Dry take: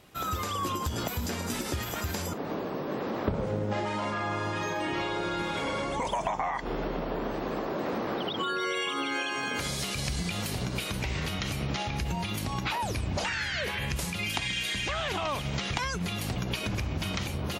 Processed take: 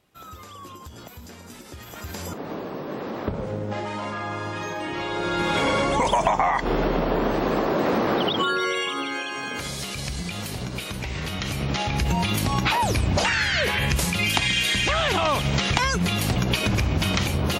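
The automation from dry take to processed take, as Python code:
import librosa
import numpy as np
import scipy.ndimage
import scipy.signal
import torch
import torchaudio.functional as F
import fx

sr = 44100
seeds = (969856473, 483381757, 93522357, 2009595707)

y = fx.gain(x, sr, db=fx.line((1.68, -10.0), (2.28, 1.0), (4.95, 1.0), (5.55, 9.5), (8.25, 9.5), (9.22, 1.0), (11.09, 1.0), (12.16, 9.0)))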